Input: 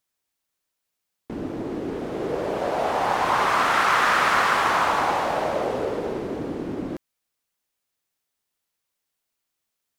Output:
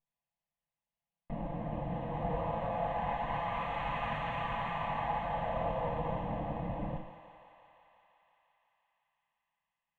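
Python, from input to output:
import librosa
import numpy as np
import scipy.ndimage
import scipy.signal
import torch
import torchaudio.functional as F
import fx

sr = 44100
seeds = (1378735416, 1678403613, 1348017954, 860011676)

y = fx.lower_of_two(x, sr, delay_ms=5.9)
y = fx.spacing_loss(y, sr, db_at_10k=25)
y = fx.fixed_phaser(y, sr, hz=1400.0, stages=6)
y = fx.rider(y, sr, range_db=5, speed_s=0.5)
y = fx.high_shelf(y, sr, hz=4000.0, db=-9.5)
y = fx.notch(y, sr, hz=2300.0, q=8.5)
y = fx.echo_thinned(y, sr, ms=172, feedback_pct=83, hz=430.0, wet_db=-11.5)
y = fx.rev_double_slope(y, sr, seeds[0], early_s=0.58, late_s=2.3, knee_db=-21, drr_db=4.5)
y = y * 10.0 ** (-5.5 / 20.0)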